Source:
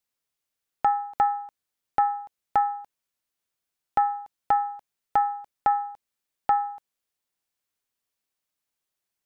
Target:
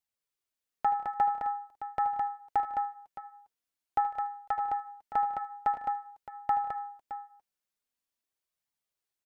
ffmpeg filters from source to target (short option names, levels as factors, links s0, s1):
-filter_complex "[0:a]asplit=2[s0][s1];[s1]aecho=0:1:77|90|152|181|212|616:0.224|0.126|0.106|0.106|0.562|0.237[s2];[s0][s2]amix=inputs=2:normalize=0,flanger=delay=0.9:depth=4.8:regen=-36:speed=0.46:shape=triangular,asettb=1/sr,asplit=3[s3][s4][s5];[s3]atrim=end=4.004[s6];[s4]atrim=start=4:end=4.58,asetpts=PTS-STARTPTS,afade=t=in:d=0.004:c=qsin,afade=t=out:st=0.576:d=0.004:c=qsin,equalizer=f=180:w=0.51:g=-8.5[s7];[s5]atrim=start=4.576[s8];[s6][s7]acrossfade=d=0.004:c1=hsin:c2=qsin[s9];[s9][s8]acrossfade=d=0.004:c1=qsin:c2=hsin,volume=0.708"